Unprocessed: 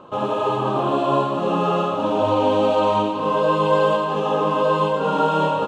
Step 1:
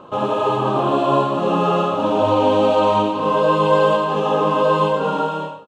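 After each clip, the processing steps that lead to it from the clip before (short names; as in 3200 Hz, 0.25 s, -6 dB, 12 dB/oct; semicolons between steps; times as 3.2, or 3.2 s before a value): ending faded out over 0.74 s; gain +2.5 dB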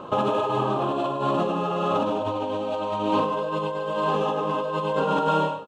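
negative-ratio compressor -23 dBFS, ratio -1; gain -2 dB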